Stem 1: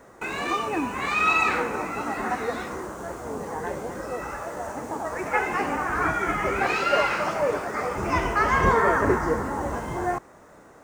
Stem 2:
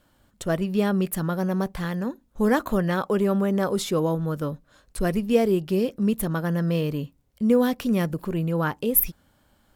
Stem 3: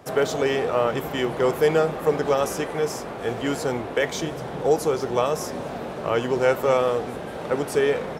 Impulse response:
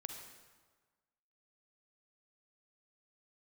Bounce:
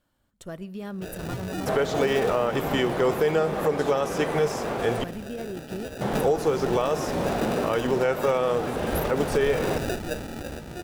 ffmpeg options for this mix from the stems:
-filter_complex "[0:a]acrusher=samples=41:mix=1:aa=0.000001,adelay=800,volume=-7dB[link_01];[1:a]alimiter=limit=-16.5dB:level=0:latency=1:release=88,volume=-11.5dB,asplit=2[link_02][link_03];[link_03]volume=-15.5dB[link_04];[2:a]acrossover=split=4500[link_05][link_06];[link_06]acompressor=threshold=-41dB:ratio=4:attack=1:release=60[link_07];[link_05][link_07]amix=inputs=2:normalize=0,adelay=1600,volume=3dB,asplit=3[link_08][link_09][link_10];[link_08]atrim=end=5.04,asetpts=PTS-STARTPTS,afade=type=out:start_time=5.036:duration=0.004:curve=hsin[link_11];[link_09]atrim=start=5.04:end=6.01,asetpts=PTS-STARTPTS,volume=0[link_12];[link_10]atrim=start=6.01,asetpts=PTS-STARTPTS,afade=type=in:duration=0.004:curve=hsin[link_13];[link_11][link_12][link_13]concat=n=3:v=0:a=1,asplit=2[link_14][link_15];[link_15]volume=-9.5dB[link_16];[3:a]atrim=start_sample=2205[link_17];[link_04][link_16]amix=inputs=2:normalize=0[link_18];[link_18][link_17]afir=irnorm=-1:irlink=0[link_19];[link_01][link_02][link_14][link_19]amix=inputs=4:normalize=0,alimiter=limit=-13dB:level=0:latency=1:release=293"

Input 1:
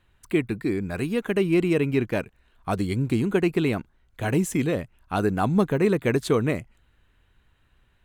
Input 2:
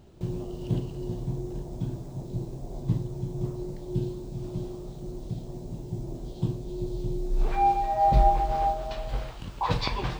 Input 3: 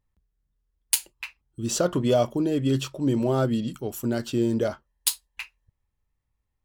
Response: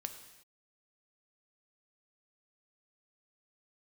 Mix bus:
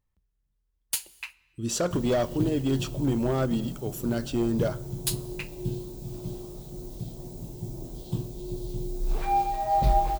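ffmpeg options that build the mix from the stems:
-filter_complex "[1:a]aemphasis=mode=production:type=50fm,adelay=1700,volume=-2dB[link_01];[2:a]asoftclip=type=hard:threshold=-18dB,volume=-4.5dB,asplit=2[link_02][link_03];[link_03]volume=-7.5dB[link_04];[3:a]atrim=start_sample=2205[link_05];[link_04][link_05]afir=irnorm=-1:irlink=0[link_06];[link_01][link_02][link_06]amix=inputs=3:normalize=0"

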